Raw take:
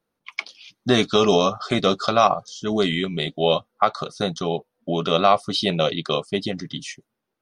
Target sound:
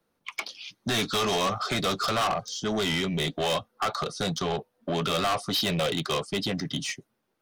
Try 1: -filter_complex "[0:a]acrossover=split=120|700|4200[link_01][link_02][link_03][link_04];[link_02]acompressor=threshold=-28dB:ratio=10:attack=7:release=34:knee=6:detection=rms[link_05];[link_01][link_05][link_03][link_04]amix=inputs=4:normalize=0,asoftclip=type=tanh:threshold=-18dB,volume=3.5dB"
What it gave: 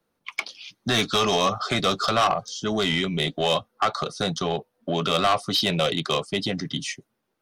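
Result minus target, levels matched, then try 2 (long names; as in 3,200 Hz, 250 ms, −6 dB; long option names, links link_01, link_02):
soft clipping: distortion −5 dB
-filter_complex "[0:a]acrossover=split=120|700|4200[link_01][link_02][link_03][link_04];[link_02]acompressor=threshold=-28dB:ratio=10:attack=7:release=34:knee=6:detection=rms[link_05];[link_01][link_05][link_03][link_04]amix=inputs=4:normalize=0,asoftclip=type=tanh:threshold=-26dB,volume=3.5dB"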